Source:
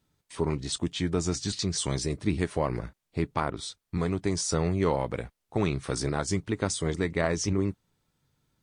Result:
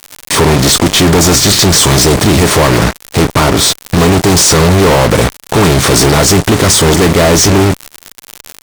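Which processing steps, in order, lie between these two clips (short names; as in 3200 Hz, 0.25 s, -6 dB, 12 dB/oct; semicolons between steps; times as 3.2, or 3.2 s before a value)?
per-bin compression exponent 0.6; crackle 280/s -39 dBFS; fuzz box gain 40 dB, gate -39 dBFS; gain +8 dB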